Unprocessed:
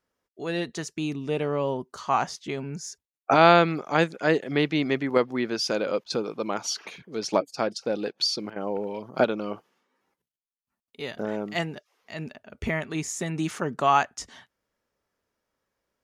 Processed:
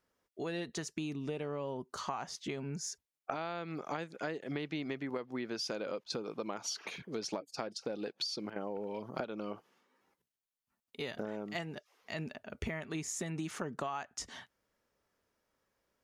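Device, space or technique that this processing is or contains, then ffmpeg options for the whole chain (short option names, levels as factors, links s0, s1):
serial compression, leveller first: -af "acompressor=threshold=0.0708:ratio=3,acompressor=threshold=0.0158:ratio=5"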